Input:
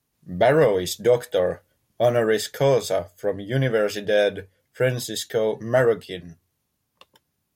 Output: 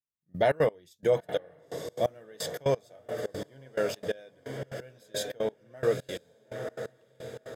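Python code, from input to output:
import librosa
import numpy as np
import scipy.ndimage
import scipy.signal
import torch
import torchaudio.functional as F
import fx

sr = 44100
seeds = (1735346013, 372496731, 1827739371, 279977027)

y = fx.echo_diffused(x, sr, ms=975, feedback_pct=55, wet_db=-9)
y = fx.step_gate(y, sr, bpm=175, pattern='....xx.x', floor_db=-24.0, edge_ms=4.5)
y = y * librosa.db_to_amplitude(-6.5)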